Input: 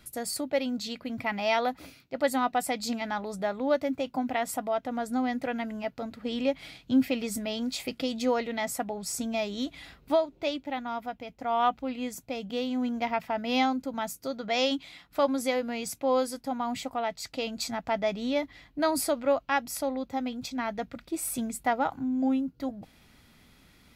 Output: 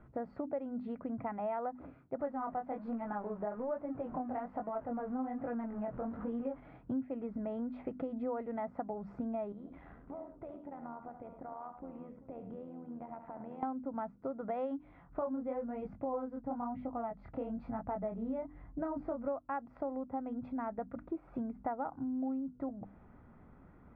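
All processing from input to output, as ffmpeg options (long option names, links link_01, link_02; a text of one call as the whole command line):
ffmpeg -i in.wav -filter_complex "[0:a]asettb=1/sr,asplit=3[link_01][link_02][link_03];[link_01]atrim=end=2.194[link_04];[link_02]atrim=start=2.19:end=6.6,asetpts=PTS-STARTPTS,afade=type=in:duration=0.004:curve=qsin,afade=type=out:start_time=4.406:duration=0.004:curve=qsin,aeval=exprs='val(0)+0.5*0.015*sgn(val(0))':channel_layout=same,flanger=delay=17:depth=7.3:speed=1.2[link_05];[link_03]atrim=start=6.596[link_06];[link_04][link_05]acrossfade=duration=0.004:curve1=hsin:curve2=qsin[link_07];[link_07][link_06]acrossfade=duration=0.004:curve1=qsin:curve2=hsin,asettb=1/sr,asplit=3[link_08][link_09][link_10];[link_08]atrim=end=9.524[link_11];[link_09]atrim=start=9.52:end=13.63,asetpts=PTS-STARTPTS,afade=type=in:duration=0.004:curve=qsin,afade=type=out:start_time=4.106:duration=0.004:curve=qsin,tremolo=f=83:d=0.621,acompressor=threshold=-44dB:ratio=12:attack=3.2:release=140:knee=1:detection=peak,aecho=1:1:71|109|390:0.355|0.266|0.168,atrim=end_sample=181251[link_12];[link_10]atrim=start=13.626[link_13];[link_11][link_12]acrossfade=duration=0.004:curve1=hsin:curve2=qsin[link_14];[link_14][link_13]acrossfade=duration=0.004:curve1=qsin:curve2=hsin,asettb=1/sr,asplit=3[link_15][link_16][link_17];[link_15]atrim=end=14.804[link_18];[link_16]atrim=start=14.8:end=19.28,asetpts=PTS-STARTPTS,afade=type=in:duration=0.004:curve=qsin,afade=type=out:start_time=4.476:duration=0.004:curve=qsin,lowshelf=frequency=190:gain=10.5,flanger=delay=19:depth=7.9:speed=1[link_19];[link_17]atrim=start=19.276[link_20];[link_18][link_19]acrossfade=duration=0.004:curve1=hsin:curve2=qsin[link_21];[link_21][link_20]acrossfade=duration=0.004:curve1=qsin:curve2=hsin,lowpass=frequency=1300:width=0.5412,lowpass=frequency=1300:width=1.3066,bandreject=frequency=50:width_type=h:width=6,bandreject=frequency=100:width_type=h:width=6,bandreject=frequency=150:width_type=h:width=6,bandreject=frequency=200:width_type=h:width=6,bandreject=frequency=250:width_type=h:width=6,bandreject=frequency=300:width_type=h:width=6,acompressor=threshold=-39dB:ratio=4,volume=2.5dB" out.wav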